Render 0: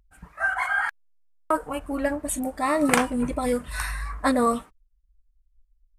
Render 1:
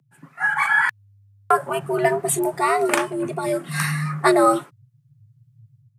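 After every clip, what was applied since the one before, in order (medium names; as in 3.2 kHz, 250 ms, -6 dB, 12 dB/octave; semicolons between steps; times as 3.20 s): level rider gain up to 9 dB; frequency shift +100 Hz; trim -1.5 dB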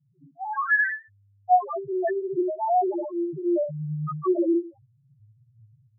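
Schroeder reverb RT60 0.33 s, combs from 29 ms, DRR 5 dB; LFO low-pass saw up 0.9 Hz 280–3500 Hz; loudest bins only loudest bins 1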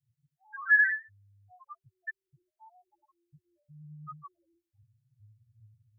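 elliptic band-stop 100–1600 Hz, stop band 50 dB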